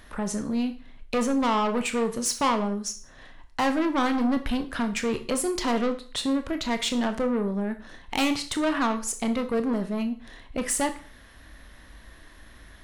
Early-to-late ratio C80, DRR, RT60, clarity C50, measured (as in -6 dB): 17.5 dB, 7.5 dB, 0.45 s, 13.0 dB